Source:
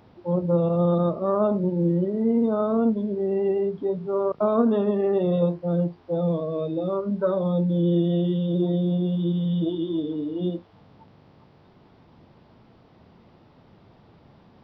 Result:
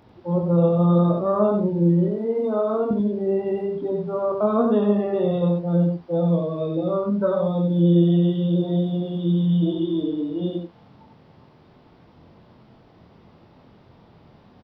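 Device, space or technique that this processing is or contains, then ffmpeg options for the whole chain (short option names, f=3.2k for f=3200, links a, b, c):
slapback doubling: -filter_complex "[0:a]asettb=1/sr,asplit=3[a][b][c];[a]atrim=end=2.084[d];[b]atrim=start=2.08:end=2.91,asetpts=PTS-STARTPTS,afade=t=in:d=0.004:c=qsin,afade=t=out:st=0.826:d=0.004:c=qsin,highpass=290[e];[c]atrim=start=2.906[f];[d][e]acrossfade=d=0.004:c1=hsin:c2=qsin[g];[g][f]acrossfade=d=0.004:c1=qsin:c2=hsin,asplit=3[h][i][j];[i]adelay=24,volume=-5dB[k];[j]adelay=93,volume=-4dB[l];[h][k][l]amix=inputs=3:normalize=0"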